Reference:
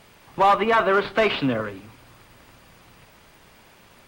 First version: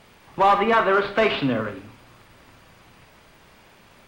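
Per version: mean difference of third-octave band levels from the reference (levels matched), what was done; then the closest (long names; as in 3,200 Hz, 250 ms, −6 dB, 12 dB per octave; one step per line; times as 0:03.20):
1.5 dB: high-shelf EQ 6,900 Hz −5.5 dB
four-comb reverb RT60 0.42 s, combs from 28 ms, DRR 8.5 dB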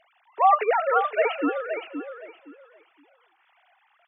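14.0 dB: three sine waves on the formant tracks
on a send: repeating echo 518 ms, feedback 22%, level −8 dB
on the sum: level −2.5 dB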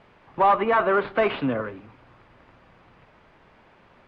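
5.0 dB: Bessel low-pass filter 1,700 Hz, order 2
low-shelf EQ 260 Hz −4 dB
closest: first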